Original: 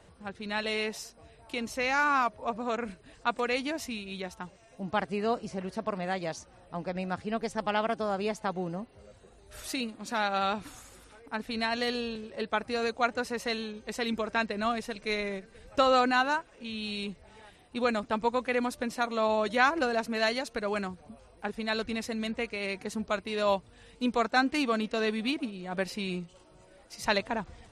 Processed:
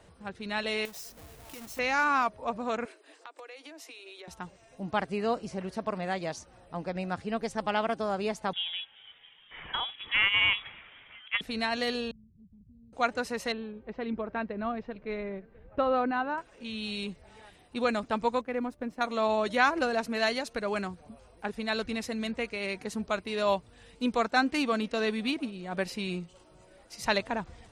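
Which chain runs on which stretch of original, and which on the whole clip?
0.85–1.79 half-waves squared off + compressor 4:1, threshold -47 dBFS + high shelf 8000 Hz +11.5 dB
2.85–4.28 steep high-pass 290 Hz 96 dB/oct + compressor 10:1, threshold -43 dBFS
8.53–11.41 HPF 190 Hz + bell 1600 Hz +7 dB 1.6 oct + inverted band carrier 3600 Hz
12.11–12.93 inverse Chebyshev low-pass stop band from 540 Hz, stop band 60 dB + compressor 2:1, threshold -54 dBFS
13.52–16.38 low-pass opened by the level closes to 2700 Hz, open at -22.5 dBFS + tape spacing loss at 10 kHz 44 dB
18.41–19.01 G.711 law mismatch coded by A + EQ curve 280 Hz 0 dB, 2300 Hz -9 dB, 4000 Hz -16 dB
whole clip: dry

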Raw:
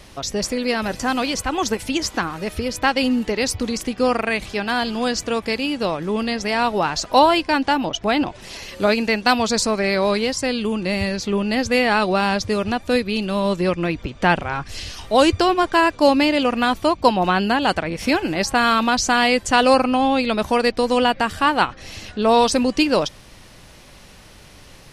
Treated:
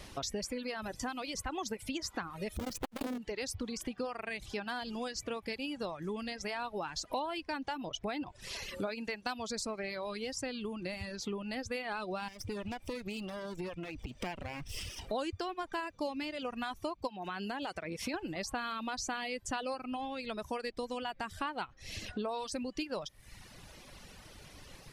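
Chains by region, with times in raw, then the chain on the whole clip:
2.56–3.18 half-waves squared off + low shelf 170 Hz +5.5 dB + core saturation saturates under 740 Hz
12.28–15.09 minimum comb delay 0.37 ms + compressor 3:1, threshold -27 dBFS
17.07–18.14 HPF 150 Hz 6 dB/oct + compressor 2.5:1, threshold -21 dBFS
whole clip: compressor 5:1, threshold -30 dBFS; reverb removal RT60 1.2 s; gain -5 dB

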